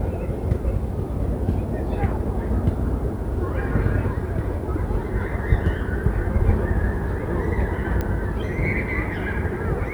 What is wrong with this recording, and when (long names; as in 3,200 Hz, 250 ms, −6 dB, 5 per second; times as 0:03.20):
0:08.01: click −13 dBFS